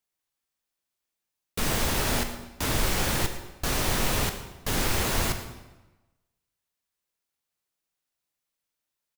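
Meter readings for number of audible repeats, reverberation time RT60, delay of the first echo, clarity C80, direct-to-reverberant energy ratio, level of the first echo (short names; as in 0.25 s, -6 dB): 1, 1.1 s, 0.113 s, 10.0 dB, 6.5 dB, -16.5 dB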